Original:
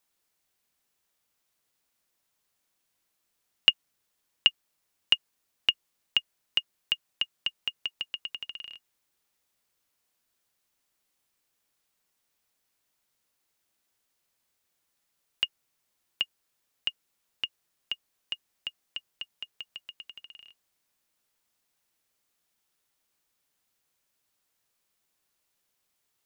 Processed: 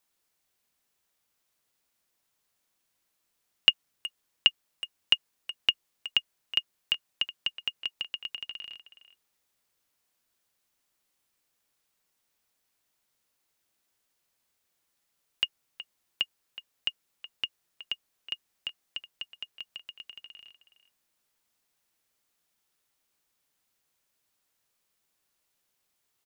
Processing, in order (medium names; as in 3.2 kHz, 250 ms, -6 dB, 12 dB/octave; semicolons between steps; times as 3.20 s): speakerphone echo 370 ms, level -13 dB